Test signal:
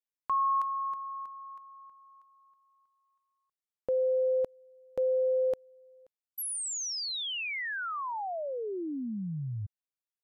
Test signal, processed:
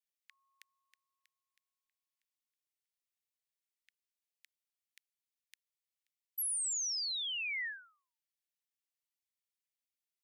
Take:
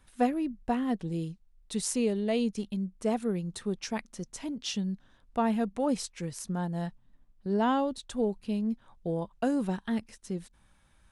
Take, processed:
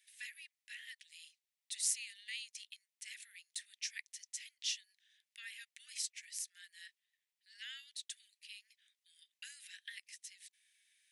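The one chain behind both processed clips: steep high-pass 1.8 kHz 72 dB/octave; dynamic bell 3 kHz, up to -3 dB, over -48 dBFS, Q 0.86

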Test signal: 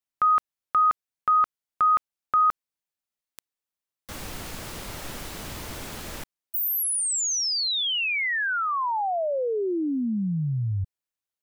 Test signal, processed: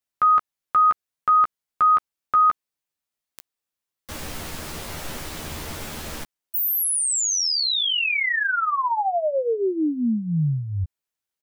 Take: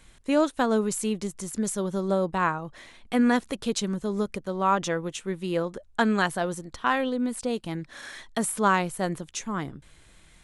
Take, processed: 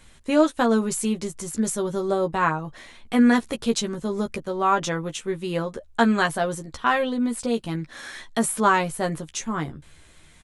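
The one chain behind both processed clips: doubling 13 ms -5 dB; trim +2 dB

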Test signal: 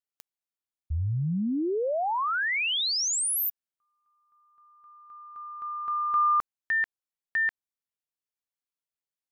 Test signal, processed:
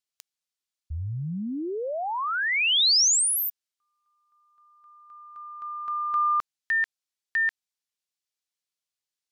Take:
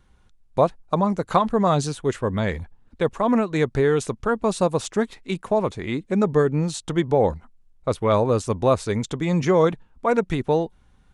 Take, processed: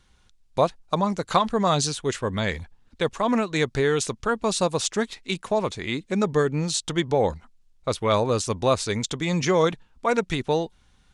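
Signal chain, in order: peaking EQ 5 kHz +11.5 dB 2.6 oct; trim -3.5 dB

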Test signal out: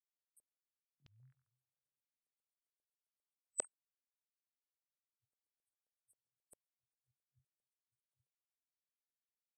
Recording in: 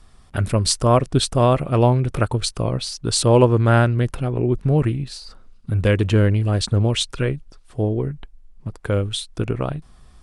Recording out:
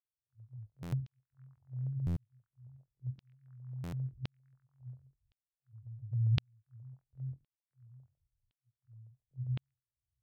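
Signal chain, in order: frequency axis rescaled in octaves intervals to 88%; gate with hold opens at -43 dBFS; FFT band-reject 130–8000 Hz; peaking EQ 1.6 kHz +11 dB 1.6 oct; LFO high-pass saw down 0.94 Hz 250–3100 Hz; in parallel at -10.5 dB: hard clipper -22.5 dBFS; on the sum: LFO low-pass saw up 7.5 Hz 520–5900 Hz; buffer glitch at 0.82/2.06/3.83 s, samples 512, times 8; trim +4.5 dB

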